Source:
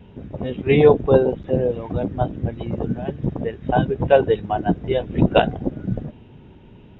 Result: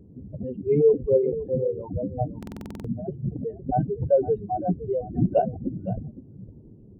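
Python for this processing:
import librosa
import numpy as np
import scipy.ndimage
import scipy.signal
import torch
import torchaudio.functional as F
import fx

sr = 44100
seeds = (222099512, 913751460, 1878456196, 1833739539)

p1 = fx.spec_expand(x, sr, power=2.7)
p2 = fx.dmg_noise_band(p1, sr, seeds[0], low_hz=82.0, high_hz=390.0, level_db=-49.0)
p3 = p2 + fx.echo_single(p2, sr, ms=512, db=-14.5, dry=0)
p4 = fx.buffer_glitch(p3, sr, at_s=(2.38,), block=2048, repeats=9)
y = F.gain(torch.from_numpy(p4), -5.0).numpy()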